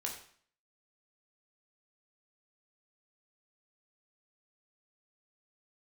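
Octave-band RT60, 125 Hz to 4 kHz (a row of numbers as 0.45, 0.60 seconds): 0.55, 0.55, 0.50, 0.55, 0.55, 0.50 seconds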